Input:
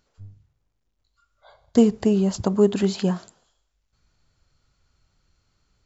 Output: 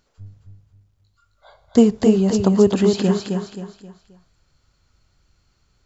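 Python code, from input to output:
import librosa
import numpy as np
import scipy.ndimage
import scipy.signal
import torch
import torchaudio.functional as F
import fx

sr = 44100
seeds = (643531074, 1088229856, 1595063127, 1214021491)

y = fx.echo_feedback(x, sr, ms=265, feedback_pct=36, wet_db=-5)
y = y * 10.0 ** (3.0 / 20.0)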